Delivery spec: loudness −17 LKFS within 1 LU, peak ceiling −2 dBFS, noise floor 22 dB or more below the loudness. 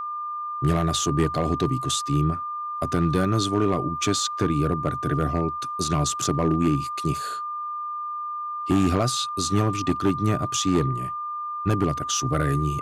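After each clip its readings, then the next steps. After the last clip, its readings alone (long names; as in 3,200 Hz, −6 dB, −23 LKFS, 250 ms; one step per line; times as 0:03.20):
share of clipped samples 0.6%; peaks flattened at −13.5 dBFS; interfering tone 1,200 Hz; level of the tone −28 dBFS; integrated loudness −24.5 LKFS; sample peak −13.5 dBFS; target loudness −17.0 LKFS
→ clipped peaks rebuilt −13.5 dBFS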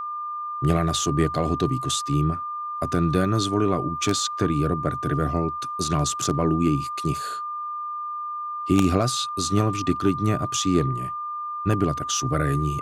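share of clipped samples 0.0%; interfering tone 1,200 Hz; level of the tone −28 dBFS
→ notch filter 1,200 Hz, Q 30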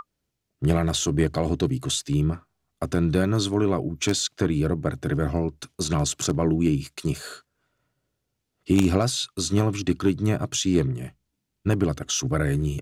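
interfering tone none found; integrated loudness −24.5 LKFS; sample peak −4.5 dBFS; target loudness −17.0 LKFS
→ level +7.5 dB
brickwall limiter −2 dBFS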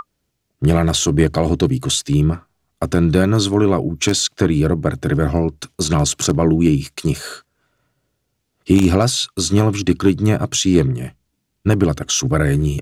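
integrated loudness −17.0 LKFS; sample peak −2.0 dBFS; background noise floor −72 dBFS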